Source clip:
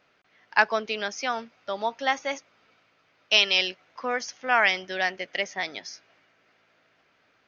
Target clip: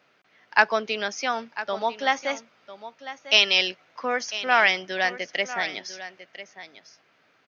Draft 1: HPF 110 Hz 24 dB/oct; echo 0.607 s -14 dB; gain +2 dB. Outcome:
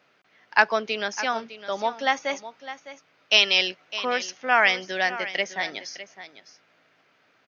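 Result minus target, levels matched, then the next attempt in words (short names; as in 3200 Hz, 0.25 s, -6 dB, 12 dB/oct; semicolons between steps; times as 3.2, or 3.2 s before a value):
echo 0.392 s early
HPF 110 Hz 24 dB/oct; echo 0.999 s -14 dB; gain +2 dB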